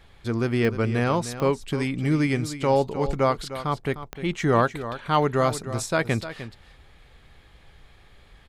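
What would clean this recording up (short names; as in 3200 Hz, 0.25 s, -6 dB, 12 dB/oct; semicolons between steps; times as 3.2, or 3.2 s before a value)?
de-click; inverse comb 0.304 s -12.5 dB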